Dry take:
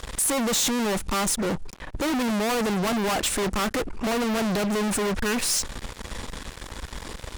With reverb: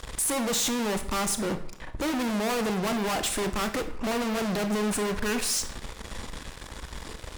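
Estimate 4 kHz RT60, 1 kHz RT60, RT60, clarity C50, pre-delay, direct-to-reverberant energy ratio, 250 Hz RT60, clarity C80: 0.50 s, 0.65 s, 0.65 s, 12.0 dB, 24 ms, 8.5 dB, 0.60 s, 15.0 dB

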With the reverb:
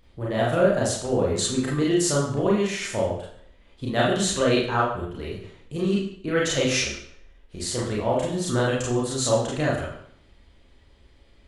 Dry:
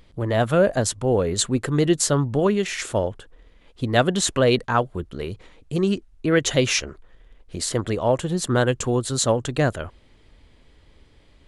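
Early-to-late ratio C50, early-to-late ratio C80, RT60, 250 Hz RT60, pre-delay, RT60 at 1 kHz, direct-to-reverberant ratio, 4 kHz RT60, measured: 2.5 dB, 6.5 dB, 0.65 s, 0.65 s, 31 ms, 0.65 s, -5.5 dB, 0.60 s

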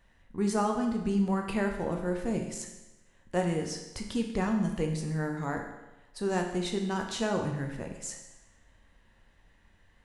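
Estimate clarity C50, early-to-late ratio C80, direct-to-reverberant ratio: 6.0 dB, 8.0 dB, 2.5 dB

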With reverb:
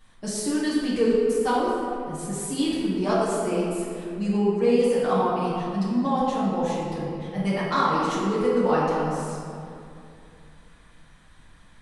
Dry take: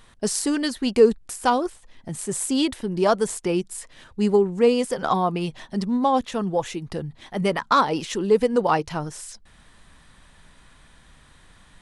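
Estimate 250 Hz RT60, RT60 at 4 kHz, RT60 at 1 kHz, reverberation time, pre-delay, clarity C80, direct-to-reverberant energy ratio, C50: 3.1 s, 1.4 s, 2.4 s, 2.6 s, 5 ms, 0.0 dB, -9.5 dB, -2.0 dB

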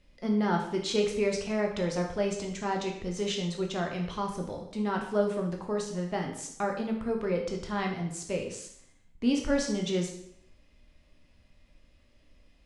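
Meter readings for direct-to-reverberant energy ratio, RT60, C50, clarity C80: 1.0 dB, 0.65 s, 6.0 dB, 9.0 dB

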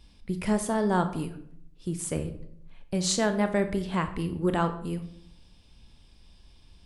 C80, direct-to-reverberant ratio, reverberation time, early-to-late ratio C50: 14.5 dB, 8.0 dB, 0.70 s, 11.5 dB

